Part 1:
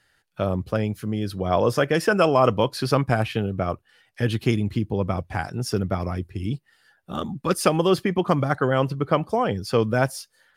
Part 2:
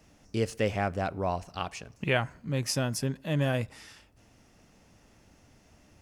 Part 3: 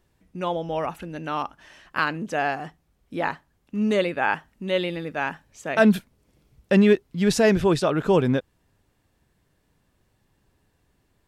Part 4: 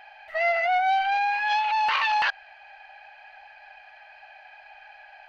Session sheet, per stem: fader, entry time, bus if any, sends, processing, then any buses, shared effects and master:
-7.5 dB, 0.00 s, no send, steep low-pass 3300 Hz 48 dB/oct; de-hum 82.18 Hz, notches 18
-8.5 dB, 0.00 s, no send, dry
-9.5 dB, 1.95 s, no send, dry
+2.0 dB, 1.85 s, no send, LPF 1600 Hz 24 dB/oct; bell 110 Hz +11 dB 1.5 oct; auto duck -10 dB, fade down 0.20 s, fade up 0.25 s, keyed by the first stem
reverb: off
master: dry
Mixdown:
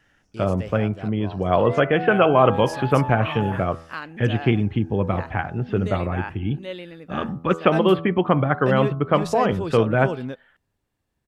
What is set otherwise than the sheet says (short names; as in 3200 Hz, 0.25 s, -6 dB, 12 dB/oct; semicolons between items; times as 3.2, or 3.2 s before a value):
stem 1 -7.5 dB -> +2.5 dB; stem 4: entry 1.85 s -> 1.30 s